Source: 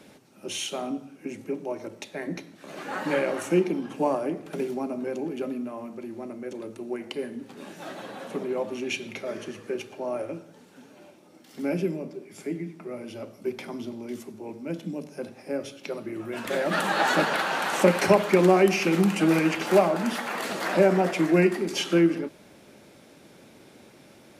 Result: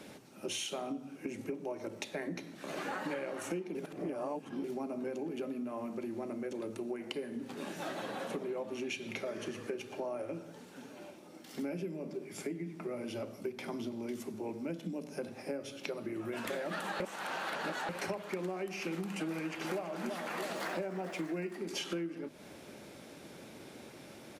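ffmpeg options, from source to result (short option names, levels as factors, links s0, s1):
-filter_complex "[0:a]asplit=2[s0][s1];[s1]afade=t=in:st=19.31:d=0.01,afade=t=out:st=19.94:d=0.01,aecho=0:1:330|660|990|1320|1650|1980:0.354813|0.177407|0.0887033|0.0443517|0.0221758|0.0110879[s2];[s0][s2]amix=inputs=2:normalize=0,asettb=1/sr,asplit=3[s3][s4][s5];[s3]atrim=end=20.554[s6];[s4]atrim=start=20.55:end=21.55,asetpts=PTS-STARTPTS,afade=t=in:d=0.004:c=qsin,afade=t=out:st=0.996:d=0.004:c=qsin,aeval=exprs='val(0)*gte(abs(val(0)),0.00668)':c=same[s7];[s5]atrim=start=21.546[s8];[s6][s7]acrossfade=d=0.004:c1=hsin:c2=qsin[s9];[s9][s8]acrossfade=d=0.004:c1=qsin:c2=hsin,asplit=5[s10][s11][s12][s13][s14];[s10]atrim=end=3.752[s15];[s11]atrim=start=3.748:end=4.642,asetpts=PTS-STARTPTS,areverse[s16];[s12]atrim=start=4.638:end=17.002[s17];[s13]atrim=start=16.998:end=17.892,asetpts=PTS-STARTPTS,areverse[s18];[s14]atrim=start=17.888[s19];[s15][s16]acrossfade=d=0.004:c1=hsin:c2=hsin[s20];[s20][s17]acrossfade=d=0.004:c1=hsin:c2=hsin[s21];[s21][s18]acrossfade=d=0.004:c1=hsin:c2=hsin[s22];[s22][s19]acrossfade=d=0.004:c1=hsin:c2=hsin,bandreject=f=50.2:t=h:w=4,bandreject=f=100.4:t=h:w=4,bandreject=f=150.6:t=h:w=4,bandreject=f=200.8:t=h:w=4,bandreject=f=251:t=h:w=4,acompressor=threshold=0.0158:ratio=10,volume=1.12"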